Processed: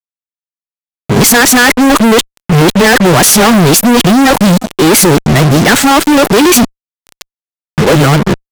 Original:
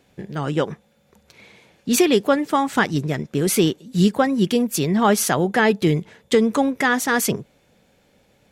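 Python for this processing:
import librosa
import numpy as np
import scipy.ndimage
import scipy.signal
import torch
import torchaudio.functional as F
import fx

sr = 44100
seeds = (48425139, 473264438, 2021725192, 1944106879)

y = x[::-1].copy()
y = fx.fuzz(y, sr, gain_db=43.0, gate_db=-37.0)
y = y * librosa.db_to_amplitude(8.5)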